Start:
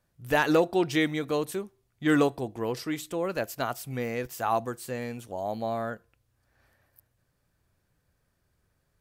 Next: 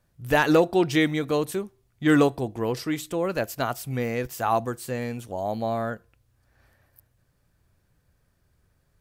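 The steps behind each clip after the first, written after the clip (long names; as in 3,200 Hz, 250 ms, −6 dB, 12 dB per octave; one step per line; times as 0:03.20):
low-shelf EQ 160 Hz +5 dB
level +3 dB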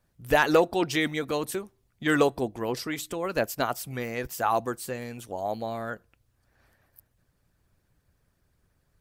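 harmonic and percussive parts rebalanced percussive +9 dB
level −7.5 dB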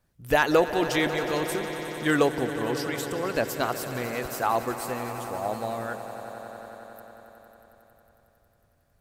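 echo that builds up and dies away 91 ms, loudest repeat 5, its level −15 dB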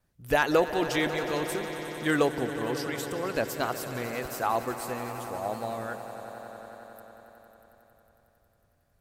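tape wow and flutter 22 cents
level −2.5 dB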